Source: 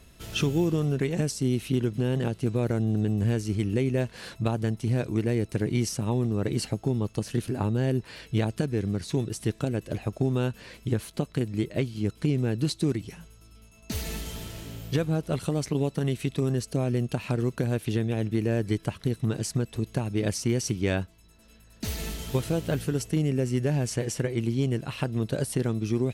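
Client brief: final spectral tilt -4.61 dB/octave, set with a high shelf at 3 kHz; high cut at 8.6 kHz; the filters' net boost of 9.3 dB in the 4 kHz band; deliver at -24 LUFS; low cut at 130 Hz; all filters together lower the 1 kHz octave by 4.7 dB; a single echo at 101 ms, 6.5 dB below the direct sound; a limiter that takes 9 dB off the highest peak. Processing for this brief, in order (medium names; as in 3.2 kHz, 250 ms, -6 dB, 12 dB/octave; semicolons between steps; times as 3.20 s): high-pass 130 Hz; low-pass 8.6 kHz; peaking EQ 1 kHz -8 dB; treble shelf 3 kHz +7 dB; peaking EQ 4 kHz +7 dB; peak limiter -18.5 dBFS; delay 101 ms -6.5 dB; trim +5.5 dB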